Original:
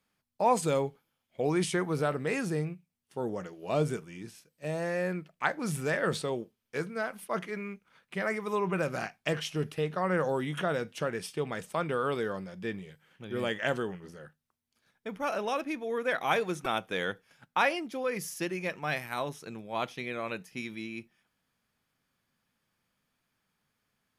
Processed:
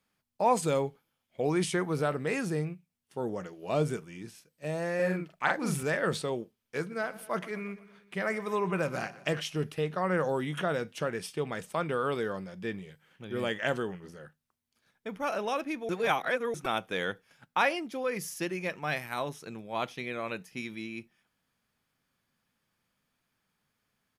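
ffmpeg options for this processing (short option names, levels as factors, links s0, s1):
-filter_complex "[0:a]asettb=1/sr,asplit=3[s0][s1][s2];[s0]atrim=end=4.954[s3];[s1]atrim=start=4.95:end=5.83,asetpts=PTS-STARTPTS,afade=t=in:d=0.004:c=qsin,afade=t=out:st=0.876:d=0.004:c=qsin,asplit=2[s4][s5];[s5]adelay=43,volume=0.794[s6];[s4][s6]amix=inputs=2:normalize=0,atrim=end_sample=38808[s7];[s2]atrim=start=5.826[s8];[s3][s7]acrossfade=d=0.004:c1=hsin:c2=qsin[s9];[s9][s8]acrossfade=d=0.004:c1=qsin:c2=hsin,asplit=3[s10][s11][s12];[s10]afade=t=out:st=6.9:d=0.02[s13];[s11]aecho=1:1:119|238|357|476|595:0.126|0.0718|0.0409|0.0233|0.0133,afade=t=in:st=6.9:d=0.02,afade=t=out:st=9.4:d=0.02[s14];[s12]afade=t=in:st=9.4:d=0.02[s15];[s13][s14][s15]amix=inputs=3:normalize=0,asplit=3[s16][s17][s18];[s16]atrim=end=15.892[s19];[s17]atrim=start=15.888:end=16.542,asetpts=PTS-STARTPTS,areverse[s20];[s18]atrim=start=16.538[s21];[s19][s20]acrossfade=d=0.004:c1=hsin:c2=hsin[s22];[s22][s21]acrossfade=d=0.004:c1=hsin:c2=hsin"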